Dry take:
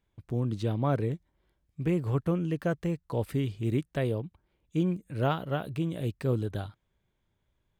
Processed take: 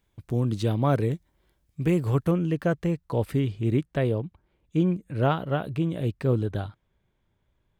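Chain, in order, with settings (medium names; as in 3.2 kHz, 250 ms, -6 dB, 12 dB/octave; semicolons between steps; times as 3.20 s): treble shelf 4.6 kHz +6 dB, from 2.31 s -3.5 dB, from 3.39 s -8.5 dB; trim +4.5 dB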